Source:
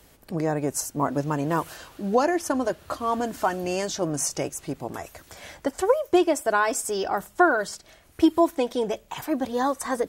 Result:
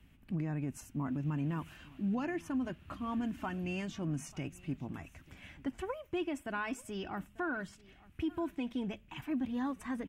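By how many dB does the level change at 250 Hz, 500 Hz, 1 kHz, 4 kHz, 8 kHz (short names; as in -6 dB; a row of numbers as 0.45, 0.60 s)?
-9.0, -19.0, -17.5, -14.0, -22.5 dB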